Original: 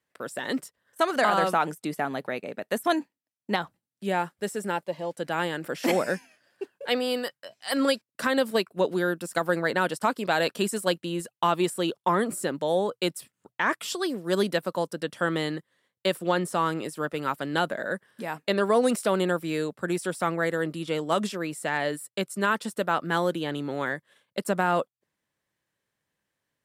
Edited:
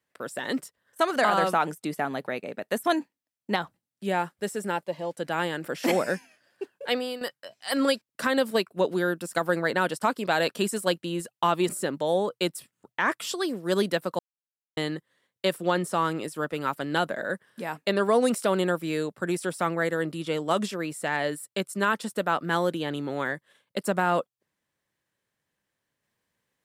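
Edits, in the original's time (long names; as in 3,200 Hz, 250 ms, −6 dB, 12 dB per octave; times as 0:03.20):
0:06.89–0:07.21: fade out, to −11 dB
0:11.69–0:12.30: remove
0:14.80–0:15.38: silence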